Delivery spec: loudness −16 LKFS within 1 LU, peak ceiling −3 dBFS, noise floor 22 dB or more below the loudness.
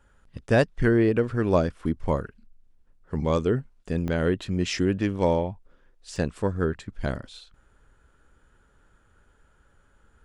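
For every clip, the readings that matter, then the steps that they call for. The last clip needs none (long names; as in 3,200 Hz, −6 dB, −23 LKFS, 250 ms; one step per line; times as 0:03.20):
number of dropouts 2; longest dropout 1.2 ms; integrated loudness −26.0 LKFS; sample peak −8.5 dBFS; target loudness −16.0 LKFS
→ repair the gap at 0:04.08/0:06.16, 1.2 ms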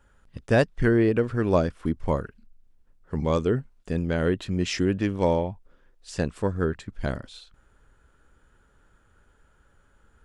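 number of dropouts 0; integrated loudness −26.0 LKFS; sample peak −8.5 dBFS; target loudness −16.0 LKFS
→ level +10 dB
brickwall limiter −3 dBFS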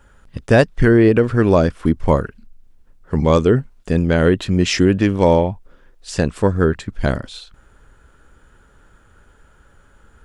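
integrated loudness −16.5 LKFS; sample peak −3.0 dBFS; background noise floor −52 dBFS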